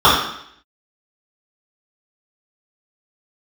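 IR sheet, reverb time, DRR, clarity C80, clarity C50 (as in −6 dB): 0.70 s, −10.5 dB, 6.0 dB, 2.5 dB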